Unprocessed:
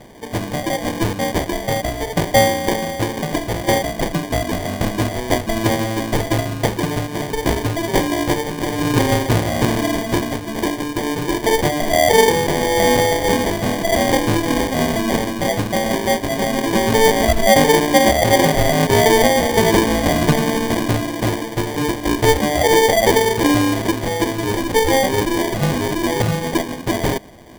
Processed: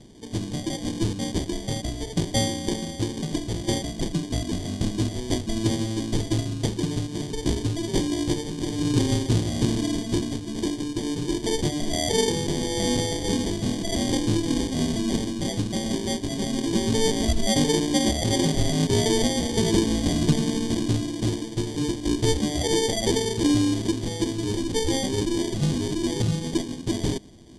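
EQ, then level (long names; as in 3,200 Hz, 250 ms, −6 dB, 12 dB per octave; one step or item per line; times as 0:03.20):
low-pass filter 9,500 Hz 24 dB per octave
flat-topped bell 1,100 Hz −12.5 dB 2.6 octaves
−4.0 dB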